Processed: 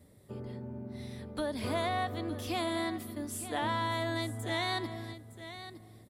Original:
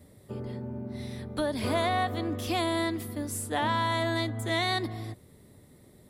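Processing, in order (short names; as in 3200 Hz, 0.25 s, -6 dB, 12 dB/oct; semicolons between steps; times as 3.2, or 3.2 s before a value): echo 0.912 s -12.5 dB; gain -5 dB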